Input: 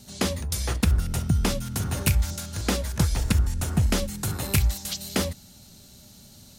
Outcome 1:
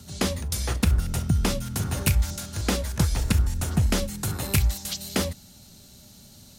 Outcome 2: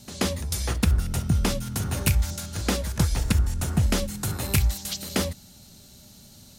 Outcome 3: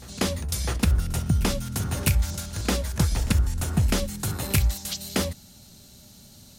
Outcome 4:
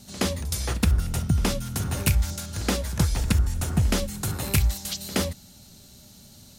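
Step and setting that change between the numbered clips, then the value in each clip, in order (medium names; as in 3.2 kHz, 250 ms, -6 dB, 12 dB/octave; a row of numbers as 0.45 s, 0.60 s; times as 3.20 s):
reverse echo, time: 1205 ms, 131 ms, 654 ms, 71 ms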